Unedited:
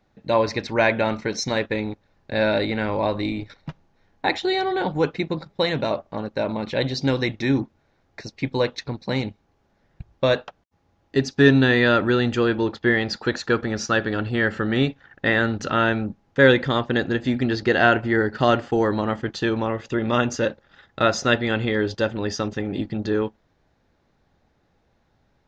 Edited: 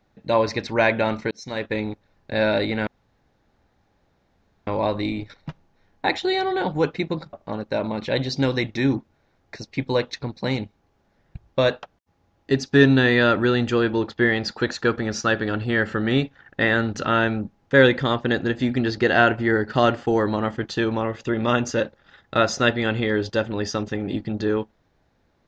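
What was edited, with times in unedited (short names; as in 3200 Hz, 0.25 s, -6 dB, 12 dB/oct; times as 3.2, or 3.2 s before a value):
1.31–1.77 fade in
2.87 insert room tone 1.80 s
5.53–5.98 cut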